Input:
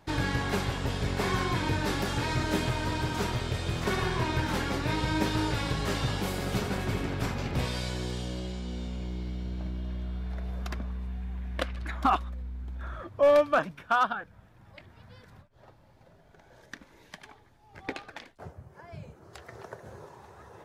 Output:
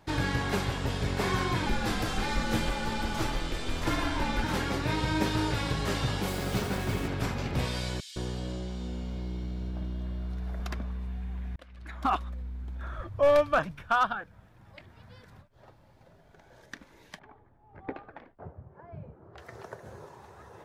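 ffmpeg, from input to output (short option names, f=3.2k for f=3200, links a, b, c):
-filter_complex "[0:a]asettb=1/sr,asplit=3[a][b][c];[a]atrim=end=1.664[d];[b]atrim=start=1.66:end=4.44,asetpts=PTS-STARTPTS,afade=t=in:d=0.004:c=qsin,afade=t=out:st=2.776:d=0.004:c=qsin,afreqshift=-85[e];[c]atrim=start=4.436[f];[d][e]acrossfade=d=0.004:c1=hsin:c2=qsin[g];[g][f]acrossfade=d=0.004:c1=qsin:c2=hsin,asettb=1/sr,asplit=3[h][i][j];[h]atrim=end=6.284[k];[i]atrim=start=6.28:end=7.08,asetpts=PTS-STARTPTS,afade=t=in:d=0.004:c=qsin,afade=t=out:st=0.796:d=0.004:c=qsin,acrusher=bits=6:mix=0:aa=0.5[l];[j]atrim=start=7.076[m];[k][l]acrossfade=d=0.004:c1=hsin:c2=qsin[n];[n][m]acrossfade=d=0.004:c1=qsin:c2=hsin,asettb=1/sr,asplit=3[o][p][q];[o]atrim=end=8.004[r];[p]atrim=start=8:end=10.6,asetpts=PTS-STARTPTS,afade=t=in:d=0.004:c=qsin,afade=t=out:st=2.596:d=0.004:c=qsin,acrossover=split=2500[s][t];[s]adelay=160[u];[u][t]amix=inputs=2:normalize=0,atrim=end_sample=114660[v];[q]atrim=start=10.596[w];[r][v]acrossfade=d=0.004:c1=hsin:c2=qsin[x];[x][w]acrossfade=d=0.004:c1=qsin:c2=hsin,asplit=3[y][z][aa];[y]afade=t=out:st=12.98:d=0.02[ab];[z]asubboost=boost=4:cutoff=120,afade=t=in:st=12.98:d=0.02,afade=t=out:st=14.16:d=0.02[ac];[aa]afade=t=in:st=14.16:d=0.02[ad];[ab][ac][ad]amix=inputs=3:normalize=0,asettb=1/sr,asplit=3[ae][af][ag];[ae]atrim=end=17.194[ah];[af]atrim=start=17.19:end=19.38,asetpts=PTS-STARTPTS,afade=t=in:d=0.004:c=qsin,afade=t=out:st=2.186:d=0.004:c=qsin,lowpass=1.2k[ai];[ag]atrim=start=19.376[aj];[ah][ai]acrossfade=d=0.004:c1=hsin:c2=qsin[ak];[ak][aj]acrossfade=d=0.004:c1=qsin:c2=hsin,asplit=2[al][am];[al]atrim=end=11.56,asetpts=PTS-STARTPTS,afade=t=out:st=11.556:d=0.004:c=hsin[an];[am]atrim=start=11.56,asetpts=PTS-STARTPTS,afade=t=in:d=0.75[ao];[an][ao]concat=n=2:v=0:a=1"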